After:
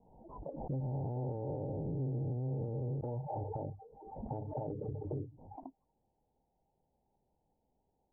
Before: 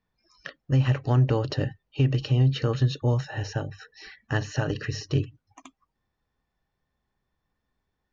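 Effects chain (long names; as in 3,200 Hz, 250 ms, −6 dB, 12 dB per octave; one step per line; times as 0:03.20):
0:00.80–0:03.01: spectrum smeared in time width 322 ms
Chebyshev low-pass filter 920 Hz, order 8
low-shelf EQ 270 Hz −11 dB
downward compressor 6 to 1, threshold −37 dBFS, peak gain reduction 11.5 dB
brickwall limiter −38 dBFS, peak gain reduction 11 dB
background raised ahead of every attack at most 57 dB per second
level +7.5 dB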